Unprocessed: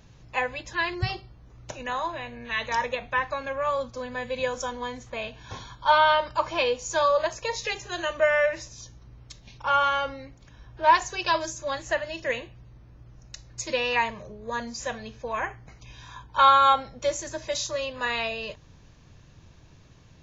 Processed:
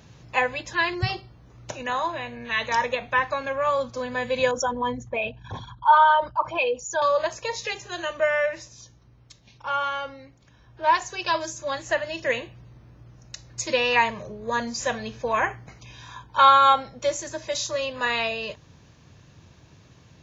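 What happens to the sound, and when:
4.51–7.02 formant sharpening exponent 2
whole clip: HPF 79 Hz 12 dB/oct; vocal rider 2 s

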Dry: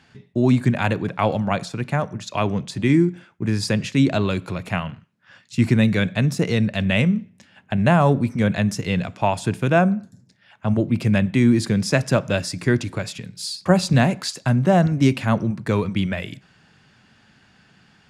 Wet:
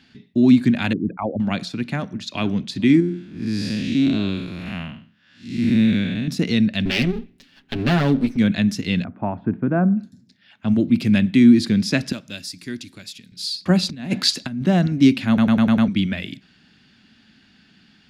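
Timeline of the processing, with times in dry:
0.93–1.4 formant sharpening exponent 3
1.95–2.36 echo throw 0.48 s, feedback 35%, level -17 dB
3–6.28 time blur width 0.196 s
6.85–8.37 minimum comb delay 7.3 ms
9.04–9.97 LPF 1400 Hz 24 dB/oct
10.71–11.37 high shelf 6900 Hz +5 dB
12.12–13.32 pre-emphasis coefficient 0.8
13.89–14.62 negative-ratio compressor -23 dBFS, ratio -0.5
15.28 stutter in place 0.10 s, 6 plays
whole clip: graphic EQ 125/250/500/1000/4000/8000 Hz -7/+9/-7/-7/+7/-7 dB

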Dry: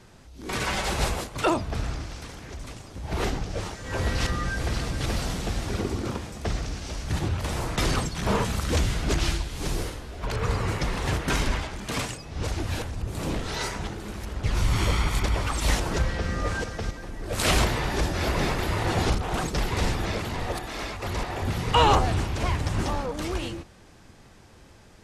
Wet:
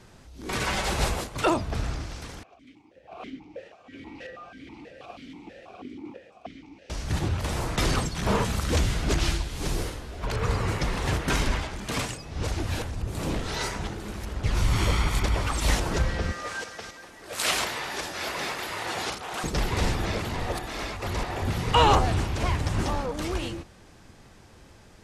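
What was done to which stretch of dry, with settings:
2.43–6.9 vowel sequencer 6.2 Hz
16.32–19.44 HPF 980 Hz 6 dB/oct

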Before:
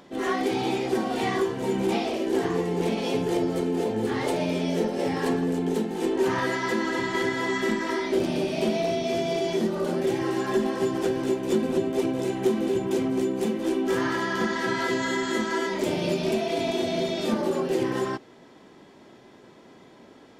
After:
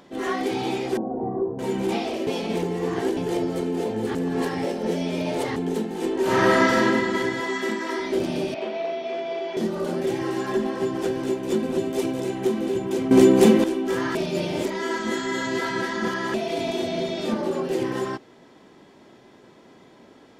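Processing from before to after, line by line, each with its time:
0.97–1.59 inverse Chebyshev low-pass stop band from 4500 Hz, stop band 80 dB
2.27–3.17 reverse
4.15–5.56 reverse
6.22–6.82 reverb throw, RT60 1.5 s, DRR -7.5 dB
7.4–8 HPF 230 Hz
8.54–9.57 BPF 480–2600 Hz
10.52–10.99 bell 12000 Hz -4.5 dB 2.1 oct
11.78–12.2 high shelf 3900 Hz +7 dB
13.11–13.64 gain +12 dB
14.15–16.34 reverse
16.87–17.64 high shelf 8700 Hz -7 dB

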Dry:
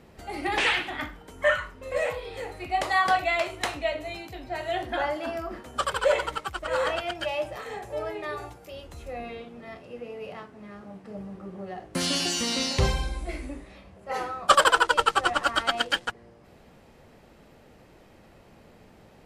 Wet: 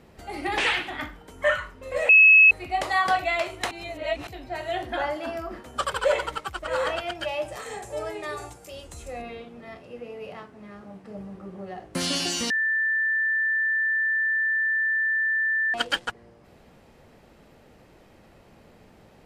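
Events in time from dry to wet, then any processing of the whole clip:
2.09–2.51 bleep 2580 Hz -10 dBFS
3.71–4.27 reverse
7.48–9.22 bell 8000 Hz +13 dB 1 oct
12.5–15.74 bleep 1770 Hz -21 dBFS

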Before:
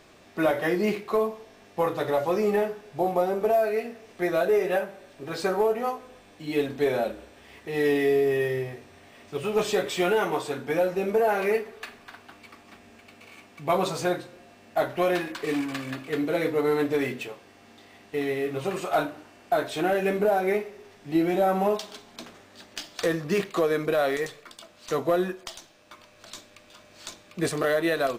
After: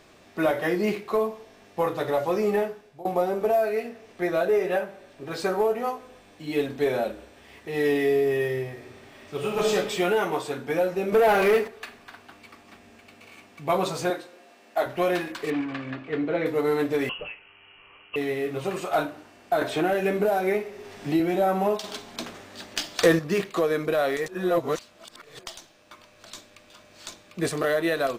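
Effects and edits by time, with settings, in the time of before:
2.59–3.05 fade out, to -20.5 dB
3.89–5.31 high shelf 5800 Hz -4 dB
8.71–9.74 reverb throw, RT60 0.96 s, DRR 1 dB
11.12–11.68 sample leveller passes 2
14.1–14.86 HPF 320 Hz
15.5–16.46 LPF 2800 Hz
17.09–18.16 inverted band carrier 3100 Hz
19.61–21.2 three-band squash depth 70%
21.84–23.19 gain +7 dB
24.28–25.39 reverse

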